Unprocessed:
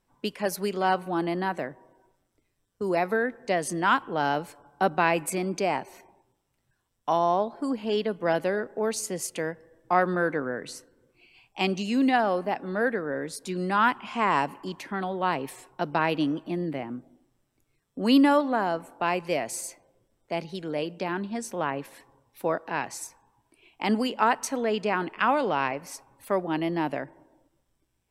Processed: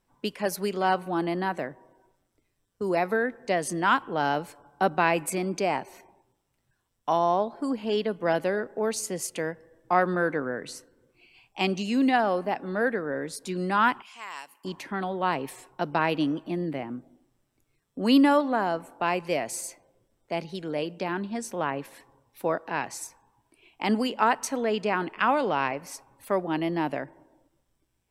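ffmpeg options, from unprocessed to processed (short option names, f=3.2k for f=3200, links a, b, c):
-filter_complex "[0:a]asettb=1/sr,asplit=3[a][b][c];[a]atrim=end=14.024[d];[b]atrim=start=14.02:end=14.65,asetpts=PTS-STARTPTS,afade=t=in:d=0.004:c=qsin,afade=t=out:st=0.626:d=0.004:c=qsin,aderivative[e];[c]atrim=start=14.646[f];[d][e]acrossfade=d=0.004:c1=hsin:c2=qsin[g];[g][f]acrossfade=d=0.004:c1=qsin:c2=hsin"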